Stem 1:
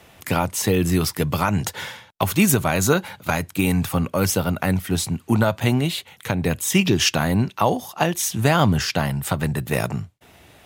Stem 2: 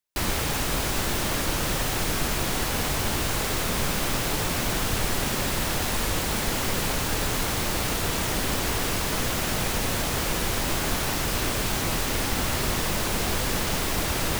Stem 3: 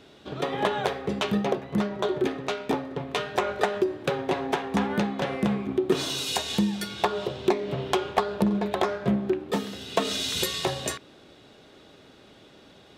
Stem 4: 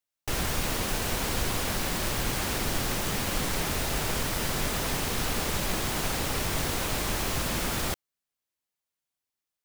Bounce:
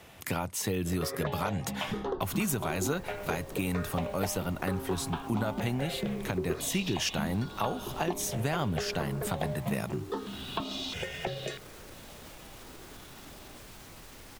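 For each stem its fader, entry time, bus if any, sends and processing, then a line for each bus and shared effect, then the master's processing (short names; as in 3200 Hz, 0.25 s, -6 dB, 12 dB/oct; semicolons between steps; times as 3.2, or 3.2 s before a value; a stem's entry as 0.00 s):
-3.0 dB, 0.00 s, no send, dry
-18.5 dB, 2.05 s, no send, limiter -21 dBFS, peak gain reduction 8.5 dB
+2.0 dB, 0.60 s, no send, LPF 3600 Hz 12 dB/oct; step phaser 3 Hz 260–2000 Hz
-10.0 dB, 1.60 s, no send, steep low-pass 1200 Hz 96 dB/oct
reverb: off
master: compressor 2:1, threshold -35 dBFS, peak gain reduction 11.5 dB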